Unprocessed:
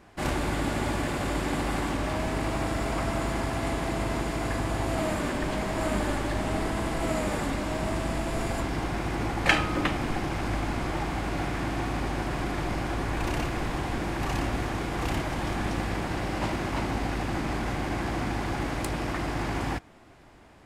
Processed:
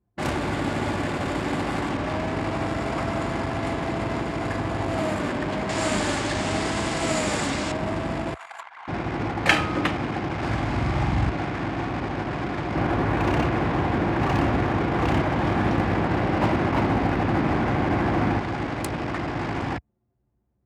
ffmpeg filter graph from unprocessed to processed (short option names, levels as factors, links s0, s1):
-filter_complex "[0:a]asettb=1/sr,asplit=3[s0][s1][s2];[s0]atrim=end=5.694[s3];[s1]atrim=start=5.69:end=7.72,asetpts=PTS-STARTPTS,afade=t=in:d=0.004:c=qsin,afade=t=out:st=2.026:d=0.004:c=qsin,lowpass=f=8400:w=0.5412,lowpass=f=8400:w=1.3066,highshelf=f=2700:g=10.5[s4];[s2]atrim=start=7.716[s5];[s3][s4]acrossfade=d=0.004:c1=hsin:c2=qsin[s6];[s6][s5]acrossfade=d=0.004:c1=qsin:c2=hsin,asettb=1/sr,asplit=3[s7][s8][s9];[s7]atrim=end=8.344[s10];[s8]atrim=start=8.34:end=8.88,asetpts=PTS-STARTPTS,afade=t=in:d=0.004:c=qsin,afade=t=out:st=0.536:d=0.004:c=qsin,highpass=f=880:w=0.5412,highpass=f=880:w=1.3066,equalizer=f=5100:t=o:w=0.24:g=-6.5[s11];[s9]atrim=start=8.876[s12];[s10][s11]acrossfade=d=0.004:c1=hsin:c2=qsin[s13];[s13][s12]acrossfade=d=0.004:c1=qsin:c2=hsin,asettb=1/sr,asplit=3[s14][s15][s16];[s14]atrim=end=10.374[s17];[s15]atrim=start=10.37:end=11.3,asetpts=PTS-STARTPTS,afade=t=in:d=0.004:c=qsin,afade=t=out:st=0.926:d=0.004:c=qsin,asubboost=boost=10.5:cutoff=170,asplit=2[s18][s19];[s19]adelay=45,volume=0.708[s20];[s18][s20]amix=inputs=2:normalize=0,atrim=end_sample=41013[s21];[s16]atrim=start=11.296[s22];[s17][s21]acrossfade=d=0.004:c1=hsin:c2=qsin[s23];[s23][s22]acrossfade=d=0.004:c1=qsin:c2=hsin,asettb=1/sr,asplit=3[s24][s25][s26];[s24]atrim=end=12.754[s27];[s25]atrim=start=12.75:end=18.39,asetpts=PTS-STARTPTS,afade=t=in:d=0.004:c=qsin,afade=t=out:st=5.636:d=0.004:c=qsin,lowpass=f=2000:p=1,acrusher=bits=8:mode=log:mix=0:aa=0.000001,acontrast=39[s28];[s26]atrim=start=18.386[s29];[s27][s28]acrossfade=d=0.004:c1=hsin:c2=qsin[s30];[s30][s29]acrossfade=d=0.004:c1=qsin:c2=hsin,anlmdn=6.31,highpass=f=69:w=0.5412,highpass=f=69:w=1.3066,volume=1.41"